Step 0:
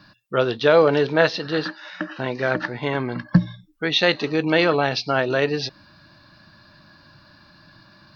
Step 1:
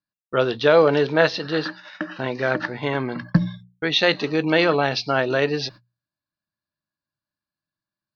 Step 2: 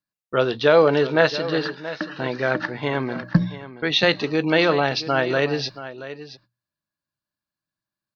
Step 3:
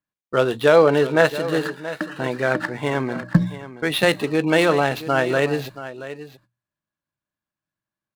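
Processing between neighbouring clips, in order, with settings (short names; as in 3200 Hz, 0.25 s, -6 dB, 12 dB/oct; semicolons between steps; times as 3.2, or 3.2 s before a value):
gate -38 dBFS, range -41 dB; notches 60/120/180 Hz
echo 0.678 s -14 dB
median filter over 9 samples; gain +1.5 dB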